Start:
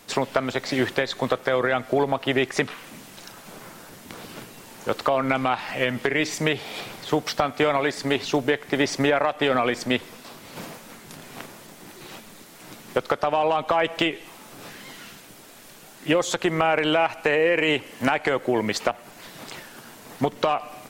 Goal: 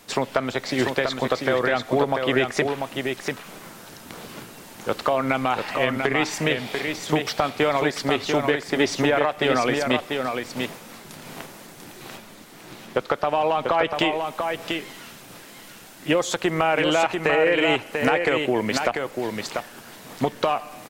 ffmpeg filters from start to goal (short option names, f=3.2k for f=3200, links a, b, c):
-filter_complex "[0:a]asettb=1/sr,asplit=3[a][b][c];[a]atrim=end=12.174[d];[b]atrim=start=12.17:end=13.95,asetpts=PTS-STARTPTS,afade=t=in:d=0.004:c=qsin,afade=t=out:st=1.776:d=0.004:c=qsin,acrossover=split=5200[e][f];[f]acompressor=threshold=-55dB:ratio=4:attack=1:release=60[g];[e][g]amix=inputs=2:normalize=0[h];[c]atrim=start=13.946[i];[d][h]acrossfade=d=0.004:c1=hsin:c2=qsin[j];[j][i]acrossfade=d=0.004:c1=qsin:c2=hsin,aecho=1:1:692:0.562"